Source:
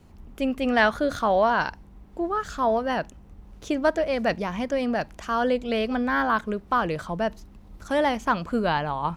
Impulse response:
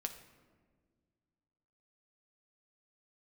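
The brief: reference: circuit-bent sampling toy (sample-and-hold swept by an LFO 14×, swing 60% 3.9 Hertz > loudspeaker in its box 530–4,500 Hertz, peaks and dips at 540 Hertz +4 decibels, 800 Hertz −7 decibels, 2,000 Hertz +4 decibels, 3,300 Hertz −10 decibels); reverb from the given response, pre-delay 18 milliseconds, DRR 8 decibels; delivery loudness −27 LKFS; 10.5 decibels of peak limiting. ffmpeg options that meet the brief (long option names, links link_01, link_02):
-filter_complex "[0:a]alimiter=limit=-16.5dB:level=0:latency=1,asplit=2[link_01][link_02];[1:a]atrim=start_sample=2205,adelay=18[link_03];[link_02][link_03]afir=irnorm=-1:irlink=0,volume=-7dB[link_04];[link_01][link_04]amix=inputs=2:normalize=0,acrusher=samples=14:mix=1:aa=0.000001:lfo=1:lforange=8.4:lforate=3.9,highpass=530,equalizer=frequency=540:width_type=q:width=4:gain=4,equalizer=frequency=800:width_type=q:width=4:gain=-7,equalizer=frequency=2000:width_type=q:width=4:gain=4,equalizer=frequency=3300:width_type=q:width=4:gain=-10,lowpass=frequency=4500:width=0.5412,lowpass=frequency=4500:width=1.3066,volume=2dB"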